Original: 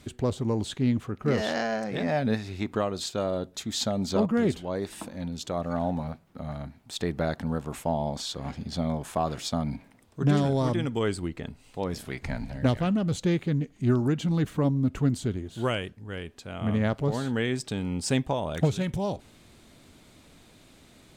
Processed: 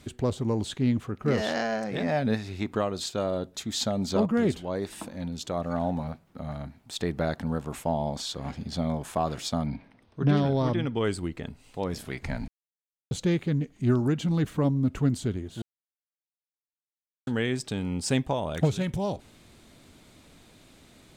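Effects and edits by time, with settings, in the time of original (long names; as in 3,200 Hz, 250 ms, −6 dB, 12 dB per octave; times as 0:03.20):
0:09.66–0:11.04: Savitzky-Golay smoothing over 15 samples
0:12.48–0:13.11: silence
0:15.62–0:17.27: silence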